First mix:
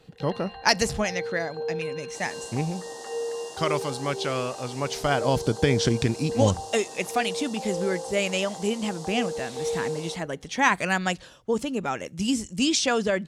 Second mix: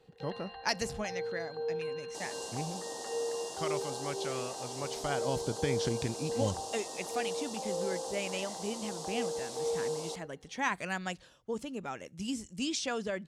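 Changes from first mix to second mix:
speech −11.0 dB
first sound −4.5 dB

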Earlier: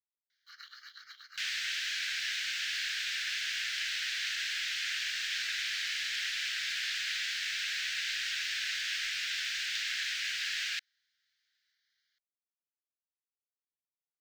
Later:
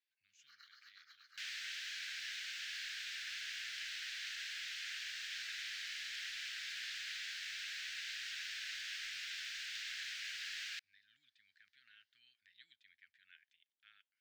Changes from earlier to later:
speech: unmuted
first sound −11.5 dB
second sound −10.0 dB

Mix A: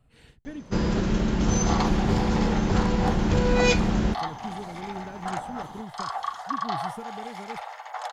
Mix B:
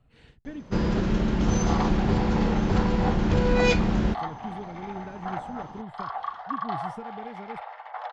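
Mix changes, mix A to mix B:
second sound: add high-frequency loss of the air 260 metres
master: add high-frequency loss of the air 92 metres

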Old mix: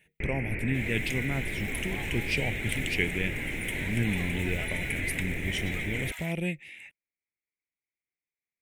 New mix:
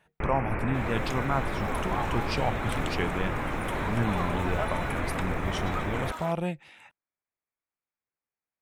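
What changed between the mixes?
first sound +3.5 dB
second sound: remove linear-phase brick-wall high-pass 640 Hz
master: remove drawn EQ curve 410 Hz 0 dB, 1,200 Hz −21 dB, 2,100 Hz +11 dB, 4,600 Hz −4 dB, 8,800 Hz +7 dB

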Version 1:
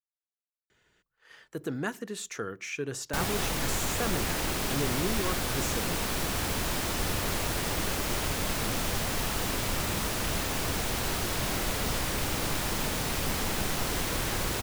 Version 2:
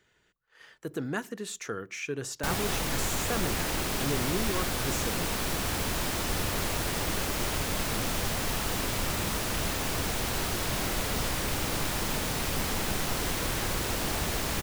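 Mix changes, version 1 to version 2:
speech: entry −0.70 s
background: entry −0.70 s

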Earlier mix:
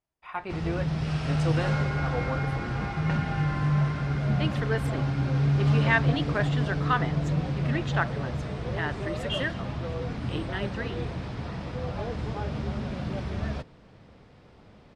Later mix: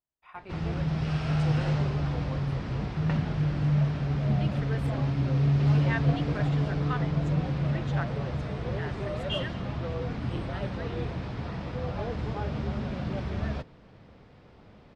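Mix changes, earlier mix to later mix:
speech −9.5 dB
first sound: add high-frequency loss of the air 60 metres
second sound: muted

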